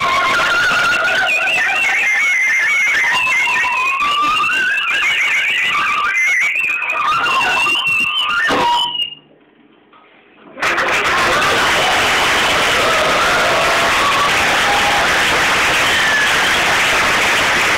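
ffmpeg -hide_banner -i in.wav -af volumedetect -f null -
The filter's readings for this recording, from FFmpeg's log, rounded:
mean_volume: -14.7 dB
max_volume: -10.2 dB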